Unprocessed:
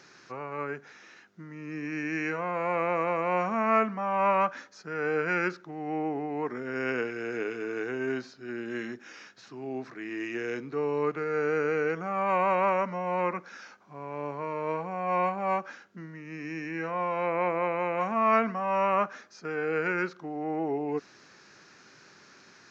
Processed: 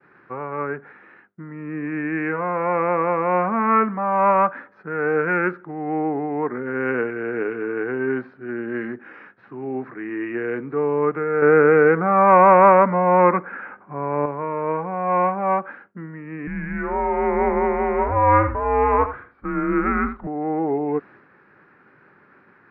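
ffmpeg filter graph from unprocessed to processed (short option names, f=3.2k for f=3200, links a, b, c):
-filter_complex "[0:a]asettb=1/sr,asplit=3[a][b][c];[a]atrim=end=11.424[d];[b]atrim=start=11.42:end=14.26,asetpts=PTS-STARTPTS,afade=t=in:d=0.004:c=qsin,afade=t=out:st=2.836:d=0.004:c=qsin,lowpass=f=2.8k:w=0.5412,lowpass=f=2.8k:w=1.3066,acontrast=52[e];[c]atrim=start=14.256[f];[d][e]acrossfade=d=0.004:c1=hsin:c2=qsin[g];[g][f]acrossfade=d=0.004:c1=qsin:c2=hsin,asettb=1/sr,asplit=3[h][i][j];[h]atrim=end=16.474[k];[i]atrim=start=16.47:end=20.27,asetpts=PTS-STARTPTS,afade=t=in:d=0.004:c=qsin,afade=t=out:st=3.796:d=0.004:c=qsin,lowpass=f=3.9k:w=0.5412,lowpass=f=3.9k:w=1.3066,afreqshift=-130,aecho=1:1:78:0.282,atrim=end_sample=167580[l];[j]atrim=start=20.266[m];[k][l]acrossfade=d=0.004:c1=hsin:c2=qsin[n];[n][m]acrossfade=d=0.004:c1=qsin:c2=hsin,bandreject=f=660:w=12,agate=range=-33dB:threshold=-50dB:ratio=3:detection=peak,lowpass=f=1.9k:w=0.5412,lowpass=f=1.9k:w=1.3066,volume=8dB"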